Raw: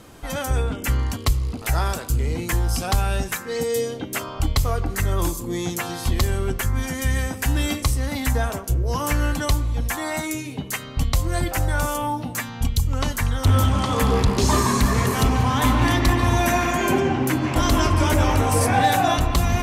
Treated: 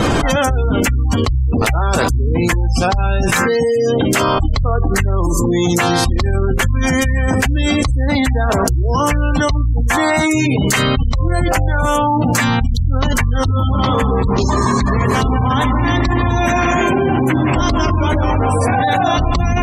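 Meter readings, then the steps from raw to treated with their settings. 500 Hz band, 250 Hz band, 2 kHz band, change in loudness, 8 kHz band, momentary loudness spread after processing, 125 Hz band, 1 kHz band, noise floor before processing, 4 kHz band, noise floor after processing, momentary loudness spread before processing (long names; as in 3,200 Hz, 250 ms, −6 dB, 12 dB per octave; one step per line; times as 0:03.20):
+8.0 dB, +8.0 dB, +8.0 dB, +6.5 dB, +3.5 dB, 2 LU, +6.0 dB, +6.5 dB, −35 dBFS, +5.5 dB, −16 dBFS, 7 LU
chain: gate on every frequency bin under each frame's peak −25 dB strong
parametric band 13,000 Hz −14.5 dB 0.74 octaves
envelope flattener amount 100%
level −1.5 dB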